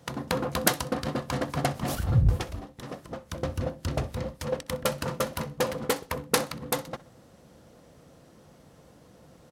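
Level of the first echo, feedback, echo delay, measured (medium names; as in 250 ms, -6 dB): -20.0 dB, 29%, 63 ms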